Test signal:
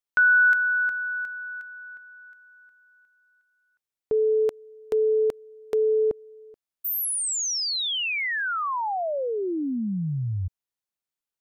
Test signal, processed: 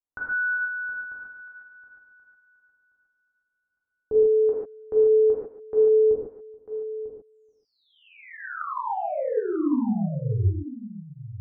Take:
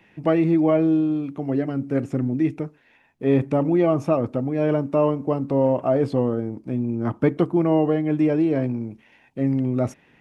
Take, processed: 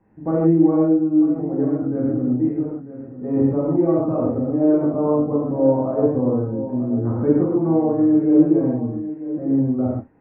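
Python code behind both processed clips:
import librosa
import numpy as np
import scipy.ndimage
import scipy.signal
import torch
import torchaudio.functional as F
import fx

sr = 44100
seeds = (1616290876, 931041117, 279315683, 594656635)

p1 = scipy.signal.sosfilt(scipy.signal.butter(4, 1400.0, 'lowpass', fs=sr, output='sos'), x)
p2 = fx.tilt_eq(p1, sr, slope=-2.0)
p3 = p2 + fx.echo_single(p2, sr, ms=945, db=-13.0, dry=0)
p4 = fx.rev_gated(p3, sr, seeds[0], gate_ms=170, shape='flat', drr_db=-6.5)
y = p4 * librosa.db_to_amplitude(-9.0)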